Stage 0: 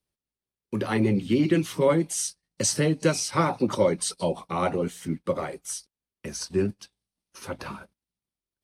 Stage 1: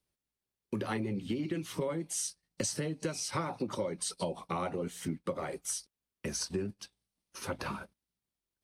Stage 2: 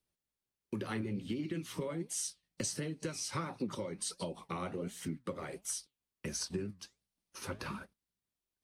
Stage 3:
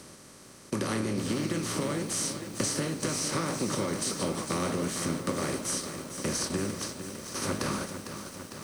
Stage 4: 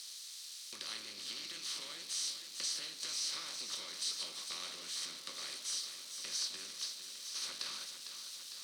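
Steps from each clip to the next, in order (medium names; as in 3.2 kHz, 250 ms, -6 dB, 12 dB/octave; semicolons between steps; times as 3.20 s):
compression 10:1, threshold -31 dBFS, peak gain reduction 15 dB
dynamic bell 720 Hz, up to -6 dB, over -49 dBFS, Q 1.4; flange 1.4 Hz, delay 2.4 ms, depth 9 ms, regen +82%; trim +2 dB
spectral levelling over time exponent 0.4; bit-crushed delay 453 ms, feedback 80%, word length 8-bit, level -9 dB; trim +2 dB
zero-crossing glitches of -31.5 dBFS; band-pass filter 4 kHz, Q 2.8; trim +1.5 dB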